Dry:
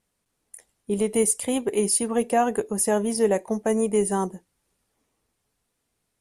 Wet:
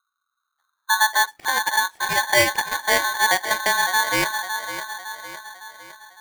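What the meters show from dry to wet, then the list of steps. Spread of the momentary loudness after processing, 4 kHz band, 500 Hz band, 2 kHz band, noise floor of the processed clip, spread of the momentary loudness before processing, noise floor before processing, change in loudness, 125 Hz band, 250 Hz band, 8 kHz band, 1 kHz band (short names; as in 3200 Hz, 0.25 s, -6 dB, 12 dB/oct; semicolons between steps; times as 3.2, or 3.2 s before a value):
17 LU, +16.0 dB, -6.0 dB, +20.0 dB, -79 dBFS, 4 LU, -77 dBFS, +3.5 dB, -4.5 dB, -11.5 dB, +0.5 dB, +8.5 dB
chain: low-pass sweep 160 Hz -> 1100 Hz, 0.52–1.35; dark delay 0.558 s, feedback 49%, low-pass 690 Hz, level -7 dB; polarity switched at an audio rate 1300 Hz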